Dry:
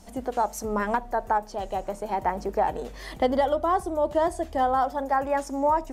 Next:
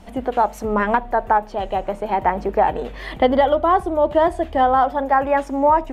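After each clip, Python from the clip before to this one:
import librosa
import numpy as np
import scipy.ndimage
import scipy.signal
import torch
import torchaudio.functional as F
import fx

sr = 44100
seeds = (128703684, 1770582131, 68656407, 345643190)

y = fx.high_shelf_res(x, sr, hz=4200.0, db=-10.5, q=1.5)
y = y * 10.0 ** (7.0 / 20.0)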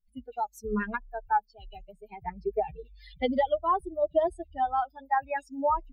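y = fx.bin_expand(x, sr, power=3.0)
y = y + 0.39 * np.pad(y, (int(4.8 * sr / 1000.0), 0))[:len(y)]
y = y * 10.0 ** (-6.0 / 20.0)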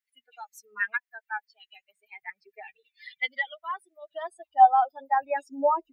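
y = fx.filter_sweep_highpass(x, sr, from_hz=1900.0, to_hz=390.0, start_s=4.0, end_s=5.07, q=4.1)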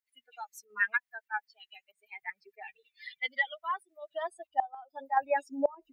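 y = fx.volume_shaper(x, sr, bpm=94, per_beat=1, depth_db=-9, release_ms=60.0, shape='slow start')
y = fx.gate_flip(y, sr, shuts_db=-14.0, range_db=-26)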